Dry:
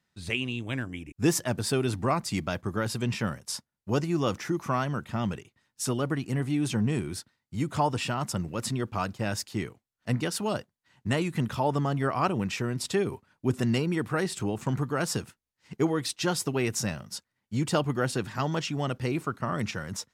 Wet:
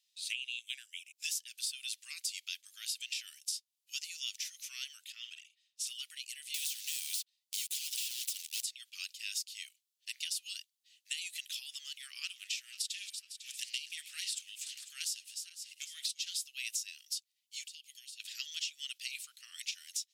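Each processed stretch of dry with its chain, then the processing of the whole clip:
5.12–5.87 s: low-pass 2.8 kHz 6 dB/octave + doubling 50 ms -7.5 dB
6.54–8.62 s: high-pass 1.2 kHz + waveshaping leveller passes 5 + spectrum-flattening compressor 2:1
12.00–16.42 s: backward echo that repeats 250 ms, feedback 59%, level -14 dB + loudspeaker Doppler distortion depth 0.14 ms
17.66–18.20 s: steep high-pass 2.1 kHz + compression 16:1, threshold -50 dBFS
whole clip: steep high-pass 2.8 kHz 36 dB/octave; compression 12:1, threshold -40 dBFS; trim +6 dB

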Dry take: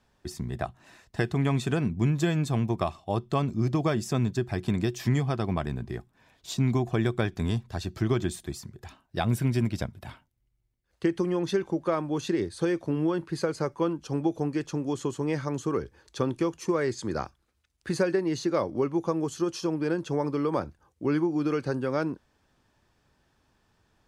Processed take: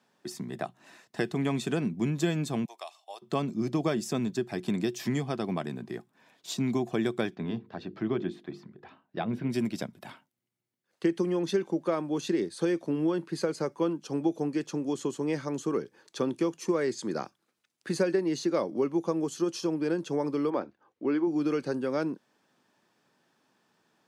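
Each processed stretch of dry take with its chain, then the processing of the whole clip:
2.65–3.22 s: high-pass 740 Hz 24 dB/octave + peaking EQ 1.3 kHz -12.5 dB 1.7 oct
7.35–9.50 s: distance through air 330 m + hum notches 50/100/150/200/250/300/350/400/450/500 Hz
20.50–21.27 s: low-pass 3.3 kHz + peaking EQ 160 Hz -12.5 dB 0.43 oct
whole clip: high-pass 170 Hz 24 dB/octave; dynamic bell 1.2 kHz, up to -4 dB, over -43 dBFS, Q 0.81

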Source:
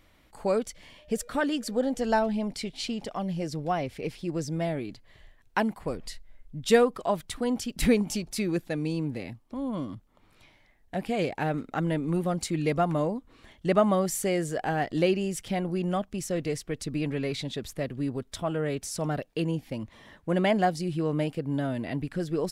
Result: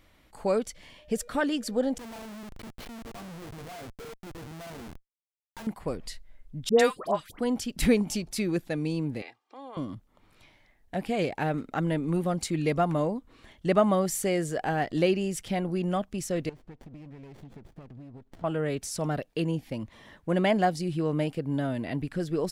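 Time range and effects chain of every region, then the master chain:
1.98–5.67 s: low-pass 2.8 kHz + feedback comb 230 Hz, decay 0.29 s, mix 90% + Schmitt trigger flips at -50.5 dBFS
6.69–7.39 s: bass shelf 130 Hz -11 dB + phase dispersion highs, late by 106 ms, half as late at 1.3 kHz
9.22–9.77 s: band-pass 690–5100 Hz + comb 2.5 ms
16.49–18.44 s: compression 16:1, threshold -41 dBFS + distance through air 64 m + sliding maximum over 33 samples
whole clip: none

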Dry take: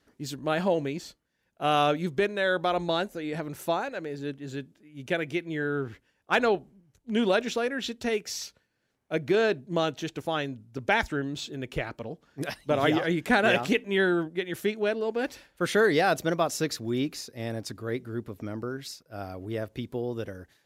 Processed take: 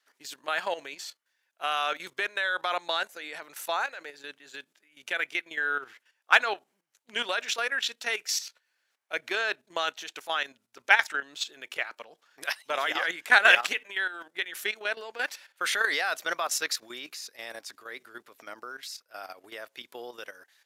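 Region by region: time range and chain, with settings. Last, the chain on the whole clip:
13.86–14.35 s: bass shelf 230 Hz -8.5 dB + compression 5:1, threshold -29 dBFS
whole clip: high-pass 1.1 kHz 12 dB/octave; dynamic bell 1.5 kHz, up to +3 dB, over -39 dBFS, Q 1.2; level held to a coarse grid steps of 12 dB; trim +8 dB

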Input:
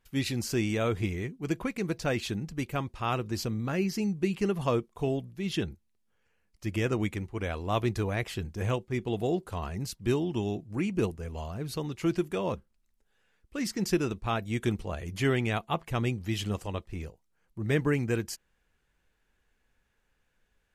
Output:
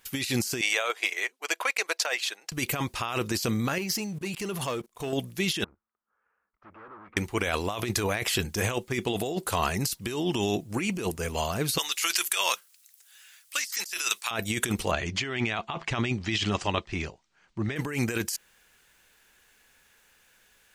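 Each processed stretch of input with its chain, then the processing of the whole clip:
0.61–2.52 s: high-pass 570 Hz 24 dB/octave + treble shelf 8 kHz -9.5 dB + transient shaper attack -2 dB, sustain -11 dB
3.78–5.13 s: level held to a coarse grid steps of 21 dB + waveshaping leveller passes 1
5.64–7.17 s: peaking EQ 120 Hz -10 dB 1.1 oct + valve stage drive 47 dB, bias 0.55 + four-pole ladder low-pass 1.4 kHz, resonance 65%
11.78–14.31 s: high-pass 1.2 kHz + treble shelf 2.9 kHz +9 dB
14.91–17.76 s: Bessel low-pass 4.3 kHz, order 8 + band-stop 490 Hz, Q 5.5
whole clip: tilt EQ +3 dB/octave; compressor with a negative ratio -37 dBFS, ratio -1; trim +8.5 dB

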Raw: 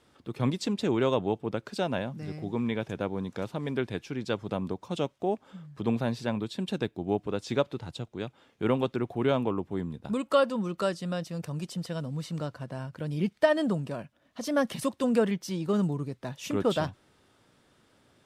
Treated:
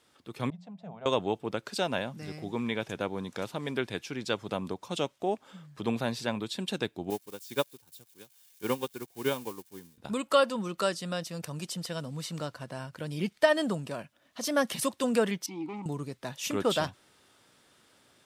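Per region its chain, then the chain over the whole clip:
0.50–1.06 s: two resonant band-passes 340 Hz, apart 2 oct + hum notches 60/120/180/240/300 Hz
7.10–9.98 s: zero-crossing glitches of -29 dBFS + comb of notches 660 Hz + upward expansion 2.5:1, over -40 dBFS
15.46–15.86 s: waveshaping leveller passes 3 + vowel filter u
whole clip: tilt EQ +2 dB/octave; level rider gain up to 4 dB; trim -3 dB

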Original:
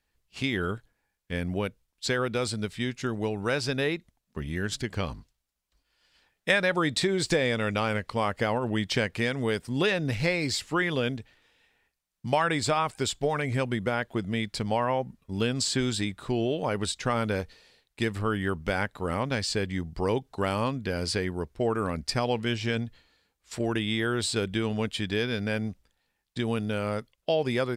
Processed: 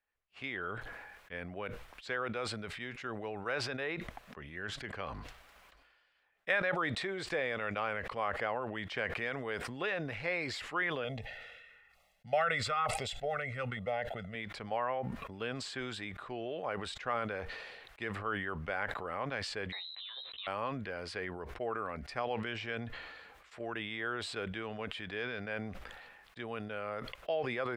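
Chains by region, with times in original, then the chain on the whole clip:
11.04–14.35 s: comb 1.5 ms, depth 80% + LFO notch saw down 1.1 Hz 590–1700 Hz
19.72–20.47 s: frequency inversion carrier 4 kHz + compressor with a negative ratio -31 dBFS + doubling 15 ms -3.5 dB
whole clip: three-band isolator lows -15 dB, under 510 Hz, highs -20 dB, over 2.7 kHz; band-stop 920 Hz, Q 12; decay stretcher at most 33 dB/s; trim -5 dB

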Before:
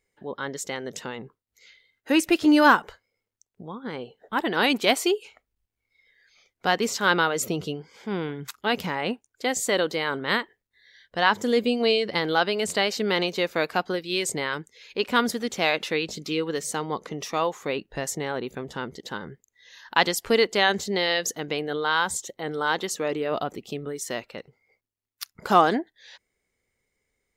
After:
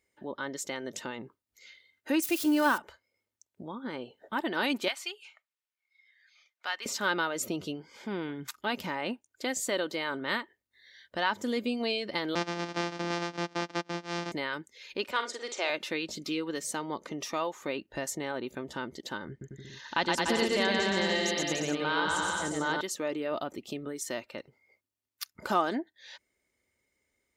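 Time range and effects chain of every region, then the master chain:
2.22–2.78 s: zero-crossing glitches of -20.5 dBFS + three bands expanded up and down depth 40%
4.88–6.86 s: high-pass 1.3 kHz + treble shelf 6.2 kHz -12 dB
12.35–14.32 s: sorted samples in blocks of 256 samples + elliptic band-pass 180–5700 Hz, stop band 50 dB
15.11–15.70 s: elliptic band-pass 380–7900 Hz + doubling 47 ms -9 dB
19.29–22.81 s: Chebyshev low-pass 7.1 kHz + bass shelf 220 Hz +11 dB + bouncing-ball echo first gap 120 ms, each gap 0.8×, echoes 6, each echo -2 dB
whole clip: high-pass 67 Hz; comb 3.3 ms, depth 39%; compression 1.5:1, threshold -38 dBFS; trim -1 dB

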